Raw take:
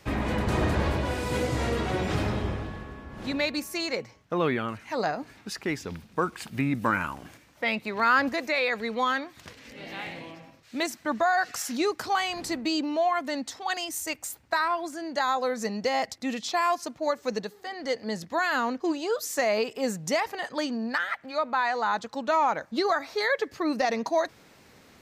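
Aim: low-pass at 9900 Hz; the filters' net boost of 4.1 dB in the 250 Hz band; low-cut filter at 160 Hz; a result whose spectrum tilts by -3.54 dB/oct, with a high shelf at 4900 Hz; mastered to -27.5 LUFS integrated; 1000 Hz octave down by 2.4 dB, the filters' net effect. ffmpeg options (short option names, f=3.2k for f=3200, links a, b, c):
-af "highpass=160,lowpass=9.9k,equalizer=f=250:t=o:g=6,equalizer=f=1k:t=o:g=-3.5,highshelf=f=4.9k:g=-4,volume=1dB"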